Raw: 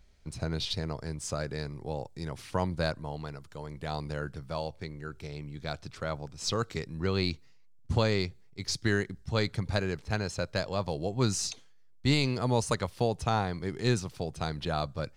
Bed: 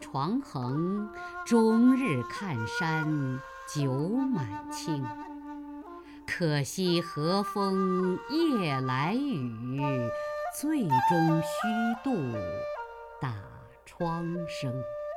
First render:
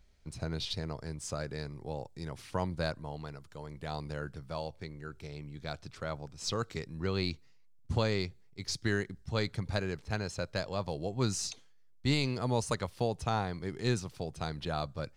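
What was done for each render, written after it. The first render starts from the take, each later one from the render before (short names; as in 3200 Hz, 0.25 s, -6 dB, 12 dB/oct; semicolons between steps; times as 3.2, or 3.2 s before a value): gain -3.5 dB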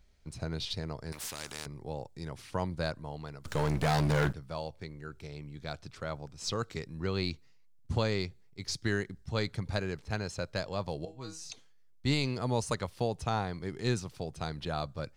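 1.12–1.66 spectral compressor 4:1; 3.45–4.33 sample leveller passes 5; 11.05–11.5 resonator 160 Hz, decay 0.29 s, mix 90%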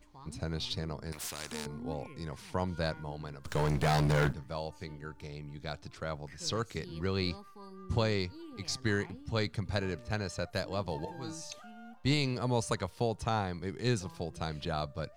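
add bed -22 dB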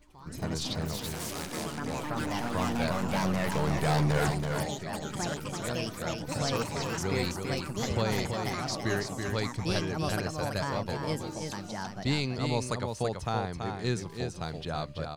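echoes that change speed 86 ms, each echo +4 st, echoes 3; on a send: echo 0.331 s -5.5 dB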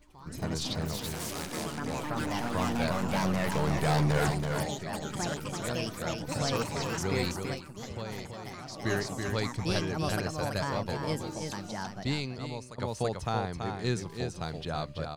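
7.46–8.88 dip -9.5 dB, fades 0.13 s; 11.83–12.78 fade out, to -17.5 dB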